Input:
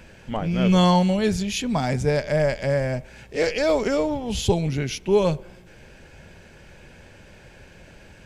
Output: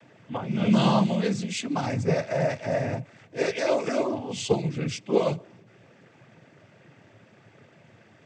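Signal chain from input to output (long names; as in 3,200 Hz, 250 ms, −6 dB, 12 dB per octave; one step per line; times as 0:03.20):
cochlear-implant simulation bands 16
one half of a high-frequency compander decoder only
level −3.5 dB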